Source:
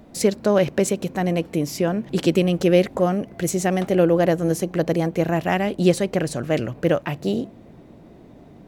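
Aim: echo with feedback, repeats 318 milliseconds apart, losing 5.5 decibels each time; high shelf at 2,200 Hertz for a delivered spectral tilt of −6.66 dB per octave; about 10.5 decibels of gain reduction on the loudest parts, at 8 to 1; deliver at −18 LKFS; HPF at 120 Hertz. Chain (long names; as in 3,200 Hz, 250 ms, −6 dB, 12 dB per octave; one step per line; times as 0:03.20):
high-pass filter 120 Hz
high-shelf EQ 2,200 Hz −6.5 dB
downward compressor 8 to 1, threshold −23 dBFS
repeating echo 318 ms, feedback 53%, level −5.5 dB
level +10 dB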